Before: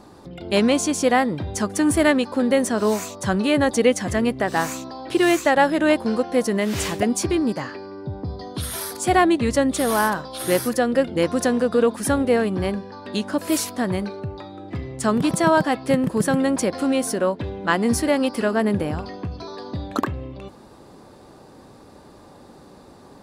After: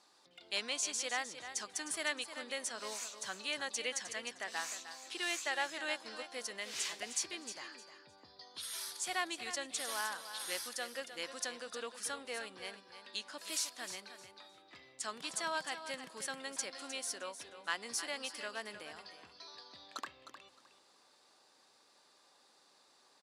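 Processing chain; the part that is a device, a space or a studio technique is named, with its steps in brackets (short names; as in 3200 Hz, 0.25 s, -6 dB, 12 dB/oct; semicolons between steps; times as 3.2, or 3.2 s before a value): piezo pickup straight into a mixer (LPF 5400 Hz 12 dB/oct; differentiator); low shelf 270 Hz -6 dB; feedback echo 0.308 s, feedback 23%, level -11 dB; gain -2 dB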